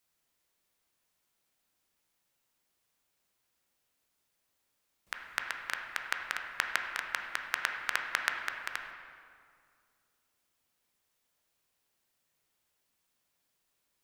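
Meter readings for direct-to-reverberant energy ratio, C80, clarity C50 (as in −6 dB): 2.5 dB, 5.5 dB, 4.5 dB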